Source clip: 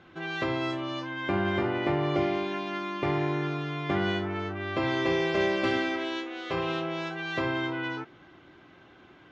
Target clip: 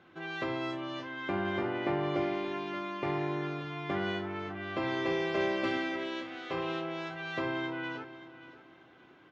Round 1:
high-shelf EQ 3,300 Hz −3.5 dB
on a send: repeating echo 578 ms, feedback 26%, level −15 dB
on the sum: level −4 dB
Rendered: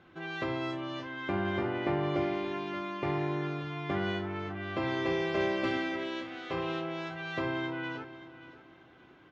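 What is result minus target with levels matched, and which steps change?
125 Hz band +3.0 dB
add first: high-pass filter 150 Hz 6 dB per octave

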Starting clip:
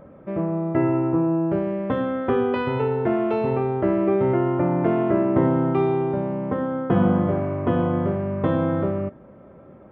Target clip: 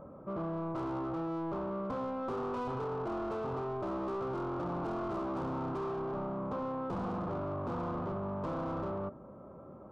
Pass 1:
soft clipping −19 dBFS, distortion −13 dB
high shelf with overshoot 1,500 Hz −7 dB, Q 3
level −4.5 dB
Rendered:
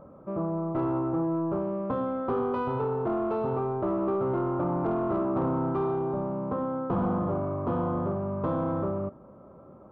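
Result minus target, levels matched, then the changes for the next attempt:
soft clipping: distortion −8 dB
change: soft clipping −31 dBFS, distortion −5 dB

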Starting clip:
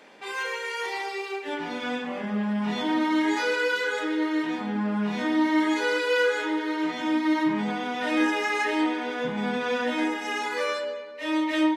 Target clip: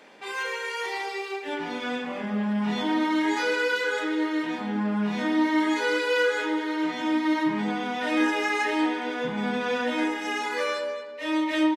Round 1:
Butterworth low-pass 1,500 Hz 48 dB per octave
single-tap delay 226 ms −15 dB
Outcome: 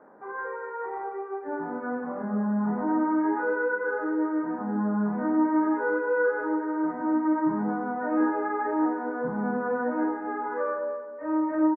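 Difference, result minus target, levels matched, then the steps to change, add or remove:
2,000 Hz band −4.5 dB
remove: Butterworth low-pass 1,500 Hz 48 dB per octave

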